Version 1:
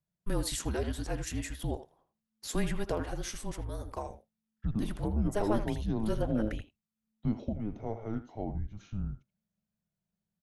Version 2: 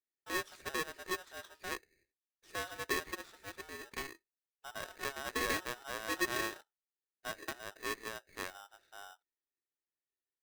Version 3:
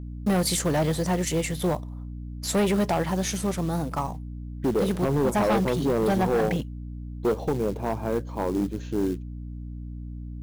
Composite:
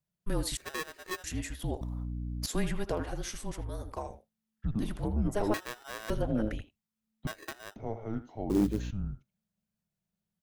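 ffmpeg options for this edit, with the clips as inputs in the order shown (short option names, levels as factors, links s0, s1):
-filter_complex "[1:a]asplit=3[s0][s1][s2];[2:a]asplit=2[s3][s4];[0:a]asplit=6[s5][s6][s7][s8][s9][s10];[s5]atrim=end=0.572[s11];[s0]atrim=start=0.568:end=1.242[s12];[s6]atrim=start=1.238:end=1.812[s13];[s3]atrim=start=1.808:end=2.462[s14];[s7]atrim=start=2.458:end=5.542[s15];[s1]atrim=start=5.538:end=6.102[s16];[s8]atrim=start=6.098:end=7.272[s17];[s2]atrim=start=7.268:end=7.762[s18];[s9]atrim=start=7.758:end=8.502[s19];[s4]atrim=start=8.498:end=8.912[s20];[s10]atrim=start=8.908[s21];[s11][s12]acrossfade=d=0.004:c1=hsin:c2=hsin[s22];[s22][s13]acrossfade=d=0.004:c1=hsin:c2=hsin[s23];[s23][s14]acrossfade=d=0.004:c1=hsin:c2=hsin[s24];[s24][s15]acrossfade=d=0.004:c1=hsin:c2=hsin[s25];[s25][s16]acrossfade=d=0.004:c1=hsin:c2=hsin[s26];[s26][s17]acrossfade=d=0.004:c1=hsin:c2=hsin[s27];[s27][s18]acrossfade=d=0.004:c1=hsin:c2=hsin[s28];[s28][s19]acrossfade=d=0.004:c1=hsin:c2=hsin[s29];[s29][s20]acrossfade=d=0.004:c1=hsin:c2=hsin[s30];[s30][s21]acrossfade=d=0.004:c1=hsin:c2=hsin"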